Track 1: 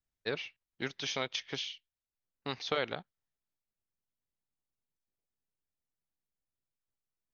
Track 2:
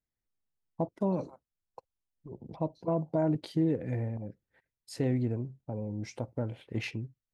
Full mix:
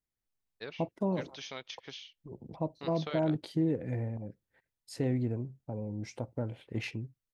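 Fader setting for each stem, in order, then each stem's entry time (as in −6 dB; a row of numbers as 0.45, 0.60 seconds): −8.0, −1.5 decibels; 0.35, 0.00 seconds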